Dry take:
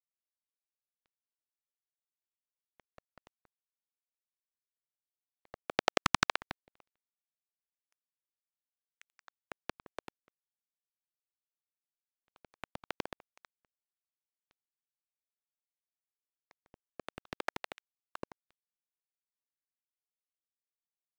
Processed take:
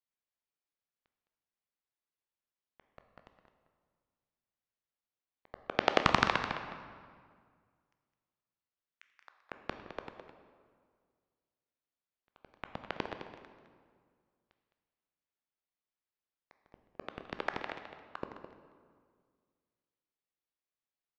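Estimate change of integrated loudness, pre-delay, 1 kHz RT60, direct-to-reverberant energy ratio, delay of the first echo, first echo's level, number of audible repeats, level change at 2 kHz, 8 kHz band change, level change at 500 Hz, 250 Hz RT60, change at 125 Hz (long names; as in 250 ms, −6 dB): +0.5 dB, 12 ms, 1.9 s, 5.5 dB, 211 ms, −10.5 dB, 1, +2.0 dB, −9.0 dB, +3.5 dB, 2.2 s, +3.5 dB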